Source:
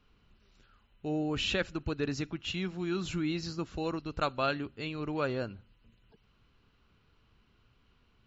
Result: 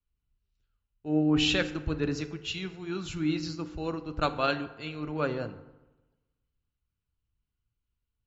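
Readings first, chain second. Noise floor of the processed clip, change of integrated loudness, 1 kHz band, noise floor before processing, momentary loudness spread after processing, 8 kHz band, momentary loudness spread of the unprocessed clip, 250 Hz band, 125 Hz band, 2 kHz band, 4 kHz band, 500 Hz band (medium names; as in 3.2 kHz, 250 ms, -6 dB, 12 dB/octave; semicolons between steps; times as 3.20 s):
under -85 dBFS, +3.5 dB, +2.5 dB, -68 dBFS, 12 LU, no reading, 7 LU, +4.5 dB, +3.0 dB, +3.0 dB, +4.5 dB, +2.0 dB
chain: FDN reverb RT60 1.9 s, low-frequency decay 1.05×, high-frequency decay 0.45×, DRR 9 dB; three bands expanded up and down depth 70%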